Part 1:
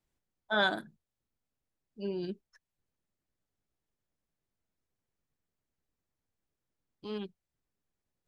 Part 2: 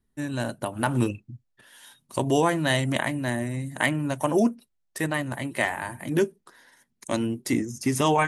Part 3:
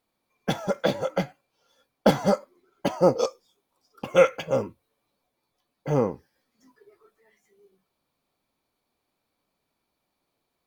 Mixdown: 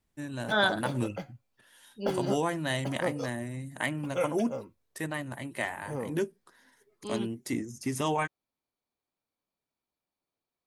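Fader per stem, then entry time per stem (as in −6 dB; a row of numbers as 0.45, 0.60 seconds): +2.5, −7.5, −13.0 decibels; 0.00, 0.00, 0.00 seconds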